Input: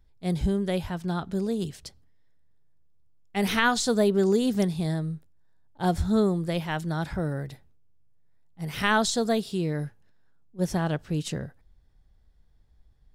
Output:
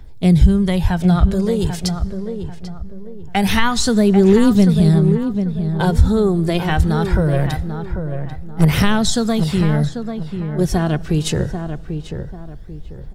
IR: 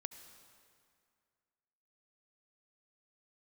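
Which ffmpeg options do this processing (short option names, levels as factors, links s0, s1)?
-filter_complex "[0:a]acrossover=split=130[s0][s1];[s1]acompressor=threshold=0.01:ratio=3[s2];[s0][s2]amix=inputs=2:normalize=0,aphaser=in_gain=1:out_gain=1:delay=2.9:decay=0.44:speed=0.23:type=triangular,asettb=1/sr,asplit=3[s3][s4][s5];[s3]atrim=end=7.334[s6];[s4]atrim=start=7.33:end=8.65,asetpts=PTS-STARTPTS,afade=t=in:d=0.004:c=qsin,afade=t=out:st=1.316:d=0.004:c=qsin,aeval=exprs='0.075*(cos(1*acos(clip(val(0)/0.075,-1,1)))-cos(1*PI/2))+0.0119*(cos(6*acos(clip(val(0)/0.075,-1,1)))-cos(6*PI/2))':c=same[s7];[s5]atrim=start=8.646[s8];[s6][s7]acrossfade=d=0.004:c1=hsin:c2=qsin[s9];[s9][s8]acrossfade=d=0.004:c1=qsin:c2=hsin,asplit=2[s10][s11];[s11]adelay=791,lowpass=f=1600:p=1,volume=0.422,asplit=2[s12][s13];[s13]adelay=791,lowpass=f=1600:p=1,volume=0.34,asplit=2[s14][s15];[s15]adelay=791,lowpass=f=1600:p=1,volume=0.34,asplit=2[s16][s17];[s17]adelay=791,lowpass=f=1600:p=1,volume=0.34[s18];[s10][s12][s14][s16][s18]amix=inputs=5:normalize=0,asplit=2[s19][s20];[1:a]atrim=start_sample=2205[s21];[s20][s21]afir=irnorm=-1:irlink=0,volume=0.398[s22];[s19][s22]amix=inputs=2:normalize=0,alimiter=level_in=7.94:limit=0.891:release=50:level=0:latency=1,volume=0.891"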